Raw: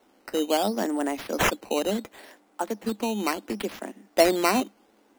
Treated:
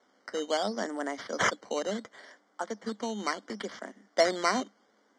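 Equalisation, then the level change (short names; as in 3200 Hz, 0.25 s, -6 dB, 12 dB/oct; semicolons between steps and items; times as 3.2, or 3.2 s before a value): Butterworth band-stop 2600 Hz, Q 3.7; speaker cabinet 110–6000 Hz, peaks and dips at 330 Hz -7 dB, 840 Hz -6 dB, 2500 Hz -6 dB, 3900 Hz -9 dB; tilt shelf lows -4.5 dB, about 740 Hz; -2.5 dB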